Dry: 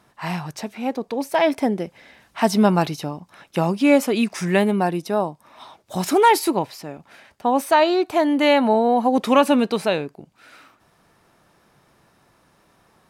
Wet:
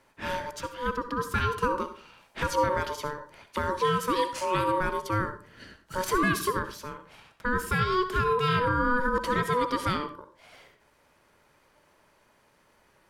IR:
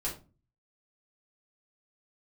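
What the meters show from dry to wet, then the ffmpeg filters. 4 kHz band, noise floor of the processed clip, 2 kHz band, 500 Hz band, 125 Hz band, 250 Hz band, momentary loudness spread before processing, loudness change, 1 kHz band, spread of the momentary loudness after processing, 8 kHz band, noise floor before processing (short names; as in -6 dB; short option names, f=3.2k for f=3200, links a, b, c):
-7.0 dB, -64 dBFS, -2.5 dB, -10.0 dB, -4.0 dB, -13.5 dB, 14 LU, -8.0 dB, -6.0 dB, 12 LU, -6.5 dB, -60 dBFS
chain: -filter_complex "[0:a]alimiter=limit=-12dB:level=0:latency=1:release=166,aeval=exprs='val(0)*sin(2*PI*740*n/s)':c=same,asplit=2[a][b];[1:a]atrim=start_sample=2205,lowshelf=f=180:g=-10.5,adelay=60[c];[b][c]afir=irnorm=-1:irlink=0,volume=-12.5dB[d];[a][d]amix=inputs=2:normalize=0,volume=-2.5dB"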